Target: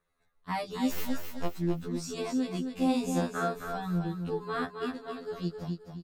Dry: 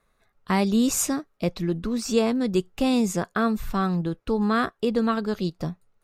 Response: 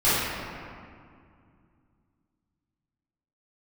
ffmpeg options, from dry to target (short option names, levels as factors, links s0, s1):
-filter_complex "[0:a]asettb=1/sr,asplit=3[s0][s1][s2];[s0]atrim=end=0.914[s3];[s1]atrim=start=0.91:end=1.6,asetpts=PTS-STARTPTS,afade=t=in:d=0.004:c=qsin,afade=t=out:st=0.686:d=0.004:c=qsin,aeval=exprs='abs(val(0))':c=same[s4];[s2]atrim=start=1.596[s5];[s3][s4]acrossfade=d=0.004:c1=hsin:c2=qsin[s6];[s6][s5]acrossfade=d=0.004:c1=qsin:c2=hsin,asettb=1/sr,asplit=3[s7][s8][s9];[s7]atrim=end=2.674[s10];[s8]atrim=start=2.67:end=3.61,asetpts=PTS-STARTPTS,afade=t=in:d=0.004:c=qsin,afade=t=out:st=0.936:d=0.004:c=qsin,asplit=2[s11][s12];[s12]adelay=45,volume=0.631[s13];[s11][s13]amix=inputs=2:normalize=0,atrim=end_sample=41454[s14];[s9]atrim=start=3.606[s15];[s10][s14]acrossfade=d=0.004:c1=hsin:c2=qsin[s16];[s16][s15]acrossfade=d=0.004:c1=qsin:c2=hsin,asettb=1/sr,asplit=3[s17][s18][s19];[s17]atrim=end=4.914[s20];[s18]atrim=start=4.91:end=5.33,asetpts=PTS-STARTPTS,afade=t=in:d=0.004:c=qsin,afade=t=out:st=0.416:d=0.004:c=qsin,acompressor=threshold=0.0562:ratio=6[s21];[s19]atrim=start=5.326[s22];[s20][s21]acrossfade=d=0.004:c1=hsin:c2=qsin[s23];[s23][s22]acrossfade=d=0.004:c1=qsin:c2=hsin,asplit=2[s24][s25];[s25]aecho=0:1:264|528|792|1056:0.473|0.147|0.0455|0.0141[s26];[s24][s26]amix=inputs=2:normalize=0,afftfilt=real='re*2*eq(mod(b,4),0)':imag='im*2*eq(mod(b,4),0)':win_size=2048:overlap=0.75,volume=0.447"